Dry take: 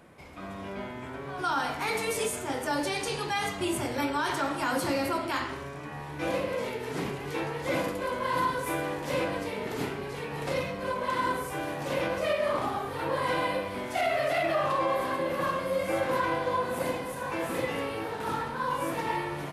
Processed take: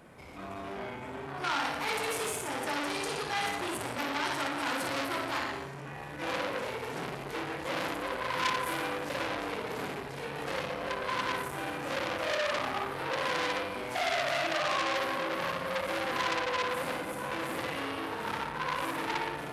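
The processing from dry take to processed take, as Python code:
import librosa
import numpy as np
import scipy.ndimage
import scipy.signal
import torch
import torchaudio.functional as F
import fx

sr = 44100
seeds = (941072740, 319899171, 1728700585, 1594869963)

y = fx.room_flutter(x, sr, wall_m=10.0, rt60_s=0.74)
y = fx.transformer_sat(y, sr, knee_hz=3600.0)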